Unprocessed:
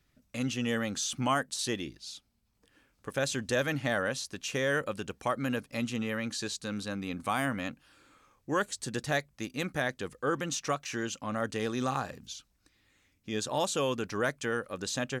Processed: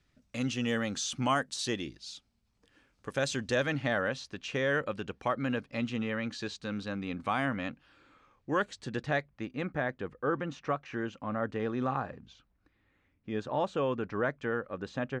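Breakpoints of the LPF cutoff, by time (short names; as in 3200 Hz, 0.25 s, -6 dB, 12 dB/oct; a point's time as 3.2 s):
3.27 s 7000 Hz
4.02 s 3600 Hz
8.69 s 3600 Hz
9.76 s 1800 Hz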